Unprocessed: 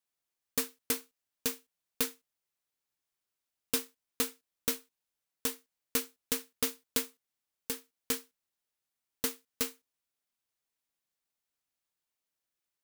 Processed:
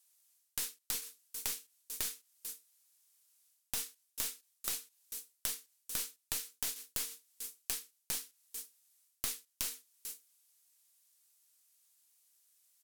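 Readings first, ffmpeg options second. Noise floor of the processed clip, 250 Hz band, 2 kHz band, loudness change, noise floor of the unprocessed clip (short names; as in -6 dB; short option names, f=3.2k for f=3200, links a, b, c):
-80 dBFS, -18.0 dB, -6.0 dB, -4.5 dB, under -85 dBFS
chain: -filter_complex "[0:a]lowpass=10k,areverse,acompressor=threshold=-40dB:ratio=16,areverse,aemphasis=mode=production:type=riaa,asplit=2[a][b];[b]aecho=0:1:442:0.112[c];[a][c]amix=inputs=2:normalize=0,acrossover=split=1000|5100[d][e][f];[d]acompressor=threshold=-59dB:ratio=4[g];[e]acompressor=threshold=-45dB:ratio=4[h];[f]acompressor=threshold=-44dB:ratio=4[i];[g][h][i]amix=inputs=3:normalize=0,highshelf=f=4.6k:g=7,aeval=exprs='0.178*(cos(1*acos(clip(val(0)/0.178,-1,1)))-cos(1*PI/2))+0.0562*(cos(7*acos(clip(val(0)/0.178,-1,1)))-cos(7*PI/2))+0.0112*(cos(8*acos(clip(val(0)/0.178,-1,1)))-cos(8*PI/2))':c=same,volume=1dB"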